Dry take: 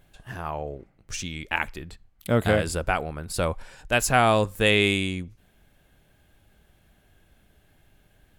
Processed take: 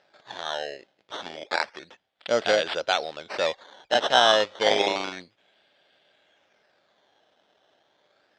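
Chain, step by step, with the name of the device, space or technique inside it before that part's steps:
circuit-bent sampling toy (sample-and-hold swept by an LFO 13×, swing 100% 0.3 Hz; loudspeaker in its box 500–5,600 Hz, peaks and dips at 580 Hz +4 dB, 1,100 Hz −5 dB, 3,400 Hz +8 dB)
level +1.5 dB

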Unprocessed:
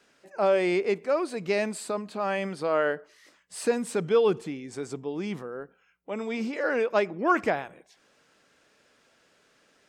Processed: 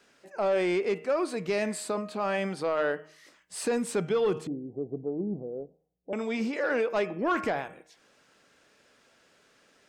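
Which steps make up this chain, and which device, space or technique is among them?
hum removal 155.9 Hz, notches 21
0:04.47–0:06.13: Butterworth low-pass 720 Hz 48 dB per octave
soft clipper into limiter (soft clipping −16.5 dBFS, distortion −19 dB; brickwall limiter −21 dBFS, peak gain reduction 4 dB)
level +1 dB

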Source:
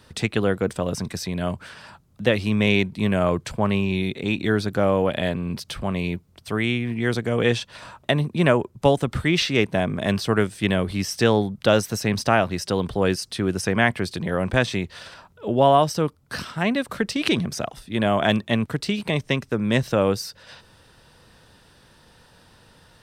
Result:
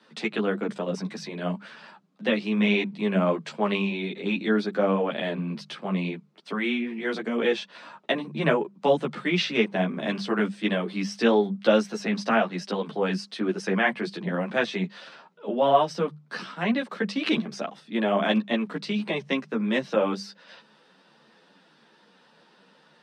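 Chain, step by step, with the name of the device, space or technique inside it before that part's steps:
Butterworth high-pass 150 Hz 96 dB per octave
mains-hum notches 50/100/150/200 Hz
0:03.48–0:03.89: parametric band 4,900 Hz +6 dB 2.6 octaves
string-machine ensemble chorus (string-ensemble chorus; low-pass filter 4,400 Hz 12 dB per octave)

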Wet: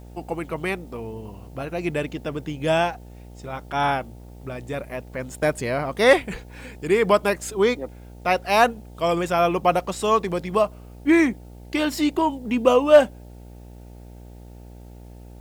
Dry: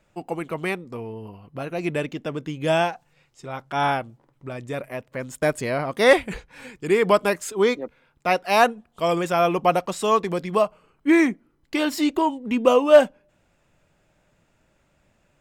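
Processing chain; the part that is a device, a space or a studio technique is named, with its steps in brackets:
video cassette with head-switching buzz (hum with harmonics 60 Hz, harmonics 15, −42 dBFS −6 dB per octave; white noise bed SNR 39 dB)

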